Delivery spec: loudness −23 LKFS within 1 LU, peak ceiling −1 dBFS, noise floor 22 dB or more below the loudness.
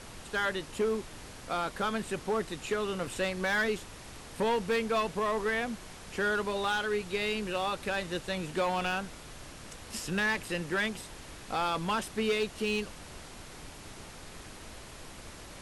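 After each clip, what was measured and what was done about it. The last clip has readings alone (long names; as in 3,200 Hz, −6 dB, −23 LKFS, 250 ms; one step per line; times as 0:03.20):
share of clipped samples 1.4%; peaks flattened at −23.5 dBFS; background noise floor −48 dBFS; target noise floor −54 dBFS; integrated loudness −32.0 LKFS; sample peak −23.5 dBFS; target loudness −23.0 LKFS
→ clipped peaks rebuilt −23.5 dBFS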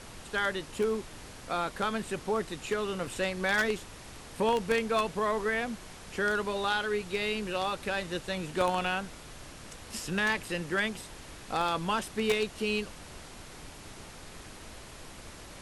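share of clipped samples 0.0%; background noise floor −48 dBFS; target noise floor −53 dBFS
→ noise reduction from a noise print 6 dB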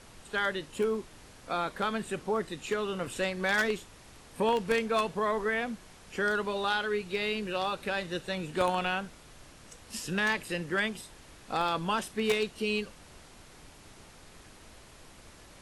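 background noise floor −54 dBFS; integrated loudness −31.0 LKFS; sample peak −14.5 dBFS; target loudness −23.0 LKFS
→ level +8 dB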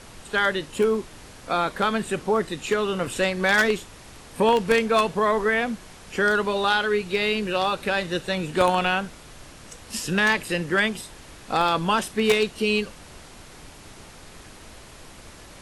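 integrated loudness −23.0 LKFS; sample peak −6.5 dBFS; background noise floor −46 dBFS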